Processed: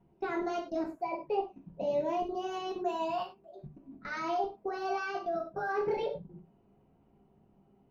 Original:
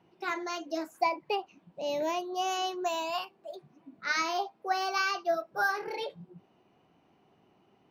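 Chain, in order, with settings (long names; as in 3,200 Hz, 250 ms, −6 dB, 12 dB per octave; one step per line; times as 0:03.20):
output level in coarse steps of 19 dB
spectral tilt −4.5 dB per octave
reverb whose tail is shaped and stops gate 130 ms falling, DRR −0.5 dB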